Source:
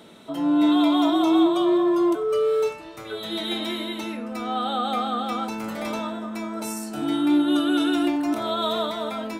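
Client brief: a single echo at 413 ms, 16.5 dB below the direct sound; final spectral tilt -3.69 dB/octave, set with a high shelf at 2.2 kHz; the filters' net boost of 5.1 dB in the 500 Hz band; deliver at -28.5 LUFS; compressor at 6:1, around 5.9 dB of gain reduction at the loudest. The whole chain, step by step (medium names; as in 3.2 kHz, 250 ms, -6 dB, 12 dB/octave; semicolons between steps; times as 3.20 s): peaking EQ 500 Hz +7 dB; treble shelf 2.2 kHz +6 dB; compression 6:1, threshold -19 dBFS; delay 413 ms -16.5 dB; trim -4.5 dB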